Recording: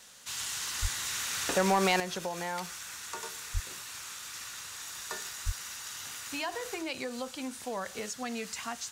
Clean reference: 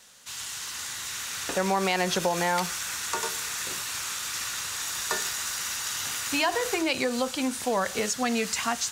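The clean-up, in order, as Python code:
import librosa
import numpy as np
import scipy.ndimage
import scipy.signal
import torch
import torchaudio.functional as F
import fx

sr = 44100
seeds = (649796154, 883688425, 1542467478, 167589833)

y = fx.fix_declip(x, sr, threshold_db=-17.5)
y = fx.fix_deplosive(y, sr, at_s=(0.81, 3.53, 5.45))
y = fx.fix_level(y, sr, at_s=2.0, step_db=10.0)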